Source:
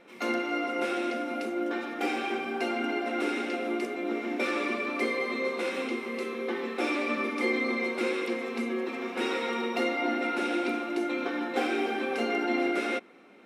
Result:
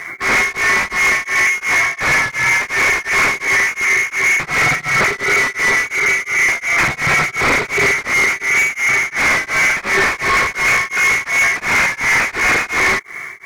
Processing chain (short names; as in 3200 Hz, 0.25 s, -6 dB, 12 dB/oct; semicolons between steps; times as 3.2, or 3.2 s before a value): Wiener smoothing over 15 samples; sine folder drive 14 dB, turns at -15 dBFS; inverted band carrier 2500 Hz; sample leveller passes 3; beating tremolo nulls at 2.8 Hz